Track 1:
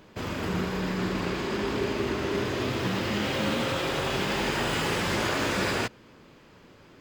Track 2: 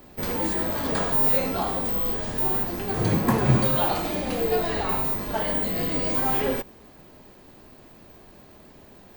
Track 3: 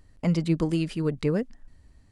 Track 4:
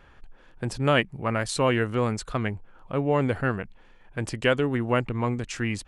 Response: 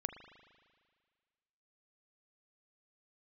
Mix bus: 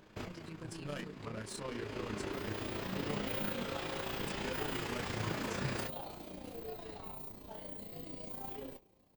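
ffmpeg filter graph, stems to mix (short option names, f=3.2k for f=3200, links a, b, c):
-filter_complex "[0:a]acompressor=threshold=-30dB:ratio=6,volume=-3dB,asplit=2[a][b];[b]volume=-16dB[c];[1:a]equalizer=f=1.6k:w=1.5:g=-9,adelay=2150,volume=-16dB,asplit=2[d][e];[e]volume=-14dB[f];[2:a]lowshelf=f=460:g=-10.5,volume=-11dB,asplit=2[g][h];[3:a]highshelf=f=5k:g=8.5,asoftclip=type=tanh:threshold=-22.5dB,volume=-11.5dB[i];[h]apad=whole_len=308946[j];[a][j]sidechaincompress=threshold=-57dB:ratio=4:attack=16:release=497[k];[4:a]atrim=start_sample=2205[l];[c][f]amix=inputs=2:normalize=0[m];[m][l]afir=irnorm=-1:irlink=0[n];[k][d][g][i][n]amix=inputs=5:normalize=0,flanger=delay=18.5:depth=2.5:speed=1.5,tremolo=f=29:d=0.519"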